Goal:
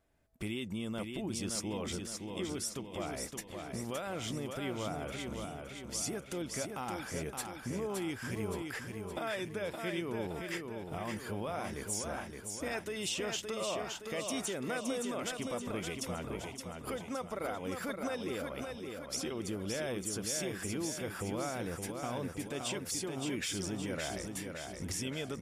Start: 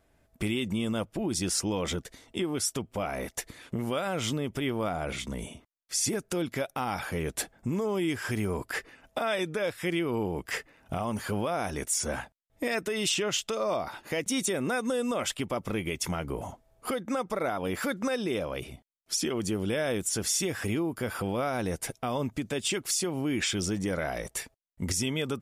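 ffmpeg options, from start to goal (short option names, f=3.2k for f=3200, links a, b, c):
-af "aecho=1:1:568|1136|1704|2272|2840|3408|3976:0.562|0.292|0.152|0.0791|0.0411|0.0214|0.0111,volume=-8.5dB"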